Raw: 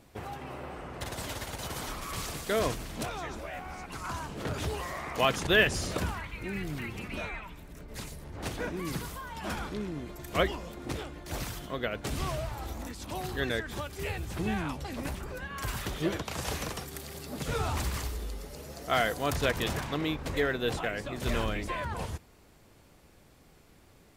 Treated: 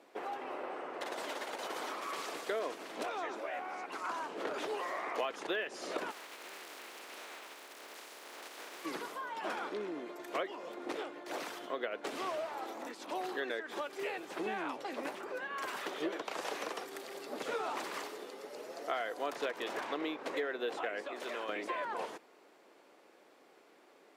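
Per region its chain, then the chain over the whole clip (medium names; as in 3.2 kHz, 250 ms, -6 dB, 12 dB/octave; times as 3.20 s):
6.10–8.84 s: spectral contrast reduction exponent 0.21 + compression 5:1, threshold -42 dBFS
21.04–21.49 s: high-pass 380 Hz 6 dB/octave + compression 2.5:1, threshold -37 dBFS
whole clip: high-pass 330 Hz 24 dB/octave; compression 6:1, threshold -34 dBFS; low-pass 2.2 kHz 6 dB/octave; trim +2 dB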